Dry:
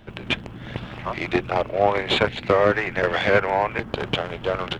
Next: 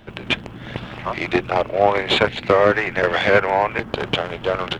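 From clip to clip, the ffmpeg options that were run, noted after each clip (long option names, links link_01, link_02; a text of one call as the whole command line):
ffmpeg -i in.wav -af "lowshelf=frequency=170:gain=-4,volume=3.5dB" out.wav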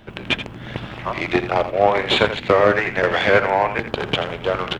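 ffmpeg -i in.wav -af "aecho=1:1:83:0.282" out.wav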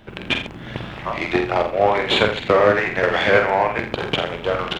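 ffmpeg -i in.wav -filter_complex "[0:a]asplit=2[link_01][link_02];[link_02]adelay=47,volume=-6dB[link_03];[link_01][link_03]amix=inputs=2:normalize=0,volume=-1dB" out.wav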